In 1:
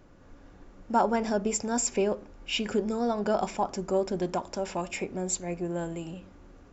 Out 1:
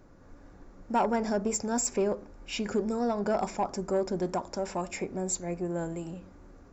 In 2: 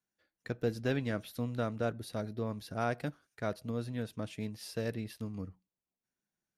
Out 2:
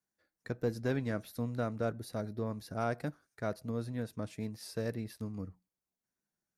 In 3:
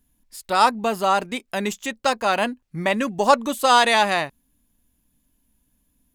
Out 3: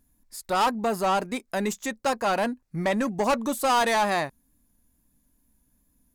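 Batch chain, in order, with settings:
bell 3000 Hz -9 dB 0.62 oct; soft clip -18 dBFS; wow and flutter 26 cents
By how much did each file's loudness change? -1.5, -0.5, -5.0 LU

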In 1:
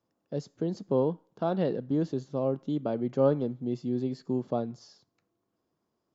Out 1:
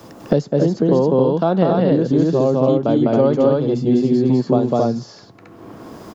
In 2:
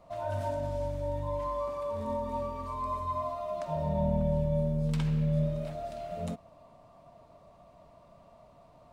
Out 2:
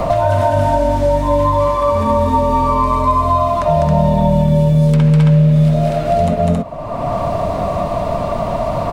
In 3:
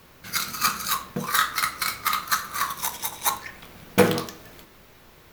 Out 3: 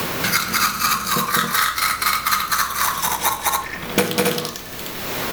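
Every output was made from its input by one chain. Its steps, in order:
loudspeakers at several distances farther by 69 m -1 dB, 93 m -1 dB; three-band squash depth 100%; normalise peaks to -2 dBFS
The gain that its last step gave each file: +9.5, +15.0, +2.0 dB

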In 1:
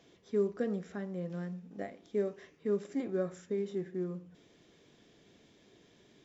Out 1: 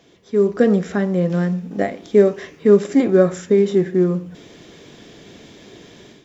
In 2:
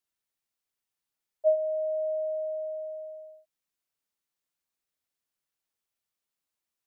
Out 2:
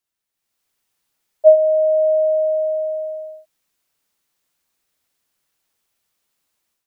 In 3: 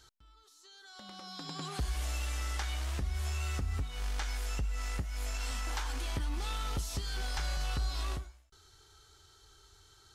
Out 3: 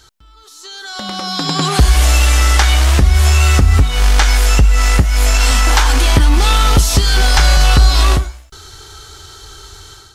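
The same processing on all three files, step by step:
AGC gain up to 11 dB; normalise peaks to -1.5 dBFS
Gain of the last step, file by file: +9.0, +3.5, +13.5 dB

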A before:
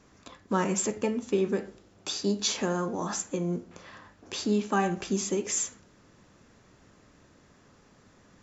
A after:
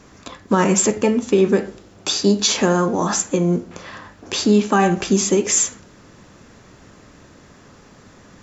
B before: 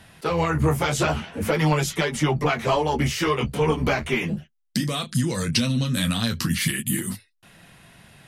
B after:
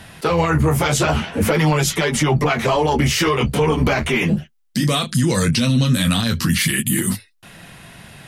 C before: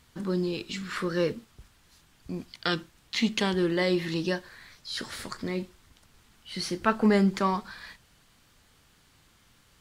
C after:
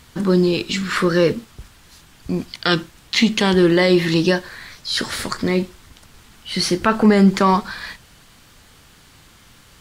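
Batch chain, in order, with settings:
limiter -18 dBFS; match loudness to -18 LUFS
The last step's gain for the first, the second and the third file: +12.0, +9.5, +13.0 dB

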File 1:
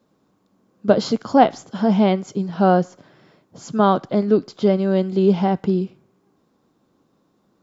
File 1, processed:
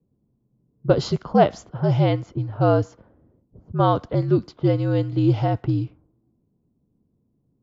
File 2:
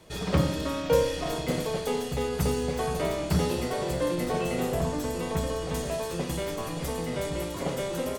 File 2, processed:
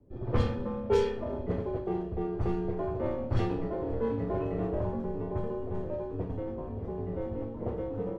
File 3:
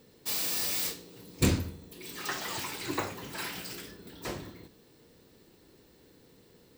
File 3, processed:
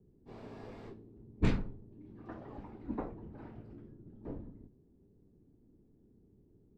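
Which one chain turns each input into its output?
frequency shift -66 Hz; low-pass opened by the level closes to 310 Hz, open at -14 dBFS; gain -2.5 dB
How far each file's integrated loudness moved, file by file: -3.0, -4.0, -9.5 LU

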